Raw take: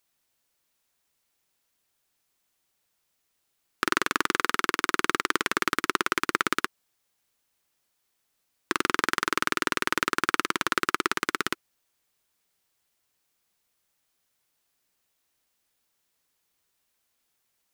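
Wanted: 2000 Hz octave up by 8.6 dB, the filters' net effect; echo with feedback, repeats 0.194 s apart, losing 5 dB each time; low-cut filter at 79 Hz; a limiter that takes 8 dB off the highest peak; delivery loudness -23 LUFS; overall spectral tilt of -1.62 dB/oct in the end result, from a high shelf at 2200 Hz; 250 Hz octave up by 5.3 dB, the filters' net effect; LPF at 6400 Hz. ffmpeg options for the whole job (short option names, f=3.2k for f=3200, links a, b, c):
-af "highpass=79,lowpass=6.4k,equalizer=f=250:t=o:g=7,equalizer=f=2k:t=o:g=8,highshelf=f=2.2k:g=6,alimiter=limit=-4.5dB:level=0:latency=1,aecho=1:1:194|388|582|776|970|1164|1358:0.562|0.315|0.176|0.0988|0.0553|0.031|0.0173,volume=1.5dB"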